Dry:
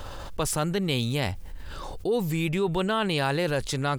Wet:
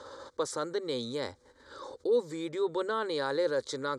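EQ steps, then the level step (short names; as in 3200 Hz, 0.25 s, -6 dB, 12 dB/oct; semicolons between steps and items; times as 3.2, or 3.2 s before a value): speaker cabinet 200–7700 Hz, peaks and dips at 230 Hz +9 dB, 510 Hz +7 dB, 730 Hz +9 dB, 2500 Hz +4 dB, 3900 Hz +7 dB; fixed phaser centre 720 Hz, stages 6; -5.0 dB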